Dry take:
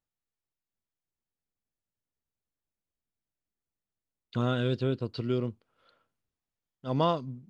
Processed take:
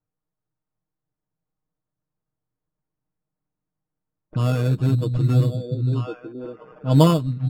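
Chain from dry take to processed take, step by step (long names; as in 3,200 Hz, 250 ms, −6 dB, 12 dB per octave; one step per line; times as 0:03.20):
spectral magnitudes quantised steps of 15 dB
low-shelf EQ 66 Hz −8 dB
echo through a band-pass that steps 527 ms, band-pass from 150 Hz, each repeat 1.4 octaves, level −2 dB
decimation without filtering 11×
bass and treble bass +9 dB, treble −5 dB
comb filter 6.5 ms, depth 79%
low-pass that shuts in the quiet parts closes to 1,200 Hz, open at −18.5 dBFS
speech leveller 2 s
level +3 dB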